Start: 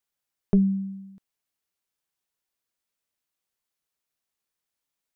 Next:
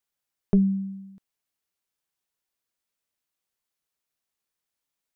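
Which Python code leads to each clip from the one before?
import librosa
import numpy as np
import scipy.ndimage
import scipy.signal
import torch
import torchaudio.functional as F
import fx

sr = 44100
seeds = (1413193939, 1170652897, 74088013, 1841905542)

y = x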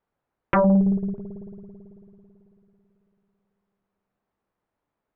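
y = scipy.signal.sosfilt(scipy.signal.butter(2, 1000.0, 'lowpass', fs=sr, output='sos'), x)
y = fx.rev_spring(y, sr, rt60_s=3.3, pass_ms=(55,), chirp_ms=35, drr_db=12.0)
y = fx.fold_sine(y, sr, drive_db=13, ceiling_db=-12.0)
y = y * 10.0 ** (-2.0 / 20.0)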